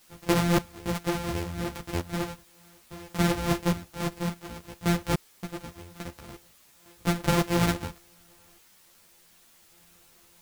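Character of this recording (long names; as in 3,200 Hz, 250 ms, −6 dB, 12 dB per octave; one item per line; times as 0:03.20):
a buzz of ramps at a fixed pitch in blocks of 256 samples
sample-and-hold tremolo 3.5 Hz, depth 100%
a quantiser's noise floor 10 bits, dither triangular
a shimmering, thickened sound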